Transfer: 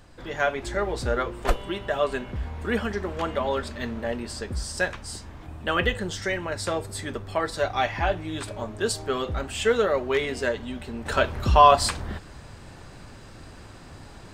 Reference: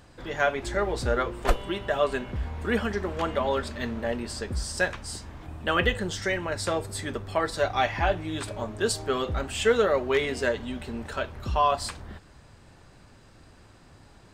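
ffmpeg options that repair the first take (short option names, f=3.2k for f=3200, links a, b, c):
-af "agate=range=-21dB:threshold=-36dB,asetnsamples=n=441:p=0,asendcmd='11.06 volume volume -8.5dB',volume=0dB"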